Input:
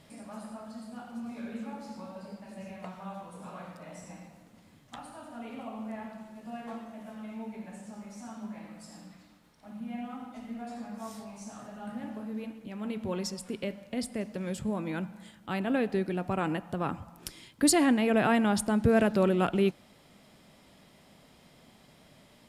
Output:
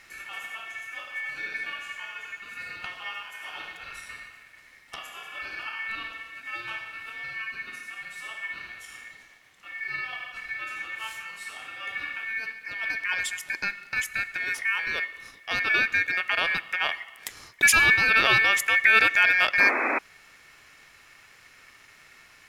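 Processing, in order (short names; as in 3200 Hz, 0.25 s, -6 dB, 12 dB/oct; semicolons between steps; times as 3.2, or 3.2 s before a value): ring modulator 2000 Hz; painted sound noise, 19.59–19.99, 230–2600 Hz -33 dBFS; gain +7.5 dB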